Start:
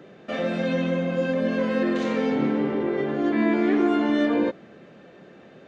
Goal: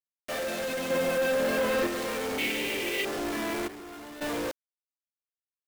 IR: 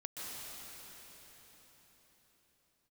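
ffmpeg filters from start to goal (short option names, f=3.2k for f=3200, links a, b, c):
-filter_complex "[0:a]highpass=410,asoftclip=type=tanh:threshold=-30dB,asettb=1/sr,asplit=3[a][b][c];[a]atrim=end=0.904[d];[b]atrim=start=0.9:end=1.87,asetpts=PTS-STARTPTS,afade=t=in:d=0.004:c=qsin,afade=t=out:st=0.966:d=0.004:c=qsin,acontrast=60[e];[c]atrim=start=1.866[f];[d][e]acrossfade=d=0.004:c1=hsin:c2=qsin[g];[g][f]acrossfade=d=0.004:c1=qsin:c2=hsin,asettb=1/sr,asplit=3[h][i][j];[h]atrim=end=2.384[k];[i]atrim=start=2.38:end=3.05,asetpts=PTS-STARTPTS,afade=t=in:d=0.004:c=qsin,afade=t=out:st=0.666:d=0.004:c=qsin,highshelf=f=1.8k:t=q:w=3:g=11.5[l];[j]atrim=start=3.046[m];[k][l]acrossfade=d=0.004:c1=hsin:c2=qsin[n];[n][m]acrossfade=d=0.004:c1=qsin:c2=hsin,acrusher=bits=5:mix=0:aa=0.000001,asplit=3[o][p][q];[o]afade=t=out:st=3.67:d=0.02[r];[p]aeval=exprs='0.0335*sin(PI/2*2.24*val(0)/0.0335)':c=same,afade=t=in:st=3.67:d=0.02,afade=t=out:st=4.2:d=0.02[s];[q]afade=t=in:st=4.2:d=0.02[t];[r][s][t]amix=inputs=3:normalize=0"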